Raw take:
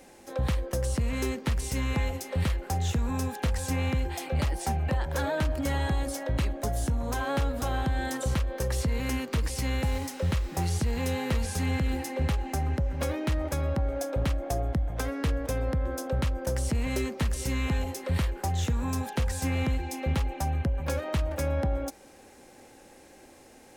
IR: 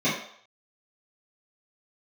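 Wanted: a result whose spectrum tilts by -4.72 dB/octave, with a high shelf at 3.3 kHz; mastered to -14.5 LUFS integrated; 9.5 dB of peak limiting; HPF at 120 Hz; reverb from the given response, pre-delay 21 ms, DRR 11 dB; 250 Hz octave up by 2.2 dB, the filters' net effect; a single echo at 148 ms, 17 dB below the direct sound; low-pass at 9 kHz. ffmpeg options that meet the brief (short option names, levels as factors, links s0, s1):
-filter_complex "[0:a]highpass=120,lowpass=9000,equalizer=f=250:t=o:g=3,highshelf=f=3300:g=4,alimiter=limit=0.0631:level=0:latency=1,aecho=1:1:148:0.141,asplit=2[s0][s1];[1:a]atrim=start_sample=2205,adelay=21[s2];[s1][s2]afir=irnorm=-1:irlink=0,volume=0.0501[s3];[s0][s3]amix=inputs=2:normalize=0,volume=8.91"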